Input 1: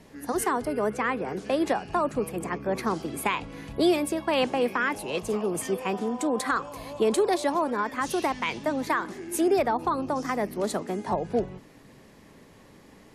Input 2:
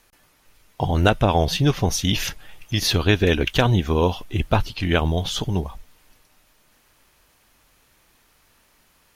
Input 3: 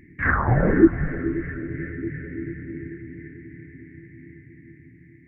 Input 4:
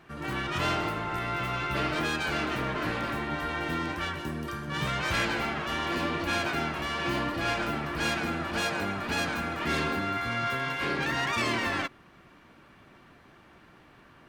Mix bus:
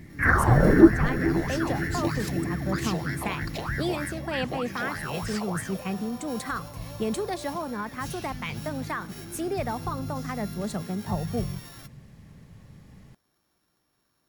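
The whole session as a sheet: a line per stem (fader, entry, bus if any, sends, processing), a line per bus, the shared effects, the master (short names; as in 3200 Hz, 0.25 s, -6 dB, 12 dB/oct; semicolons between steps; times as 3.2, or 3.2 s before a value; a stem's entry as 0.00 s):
-5.0 dB, 0.00 s, no send, resonant low shelf 210 Hz +13.5 dB, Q 1.5; notch 970 Hz, Q 13
-4.0 dB, 0.00 s, no send, band shelf 1000 Hz -16 dB 2.7 oct; compressor, threshold -26 dBFS, peak gain reduction 12 dB; ring modulator with a swept carrier 1200 Hz, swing 55%, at 3.2 Hz
+0.5 dB, 0.00 s, no send, dry
-20.0 dB, 0.00 s, no send, sample sorter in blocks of 8 samples; high shelf 7700 Hz +11 dB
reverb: off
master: dry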